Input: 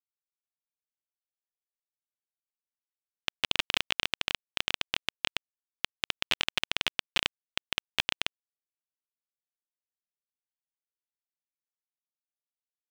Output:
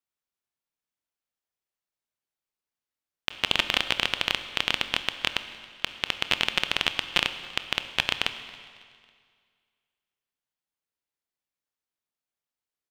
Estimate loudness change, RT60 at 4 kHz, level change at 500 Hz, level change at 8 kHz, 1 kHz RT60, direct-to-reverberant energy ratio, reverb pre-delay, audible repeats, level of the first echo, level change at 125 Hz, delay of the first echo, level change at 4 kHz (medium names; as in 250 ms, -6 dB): +4.5 dB, 1.9 s, +6.5 dB, +2.0 dB, 2.0 s, 10.0 dB, 22 ms, 2, -23.5 dB, +6.5 dB, 275 ms, +4.5 dB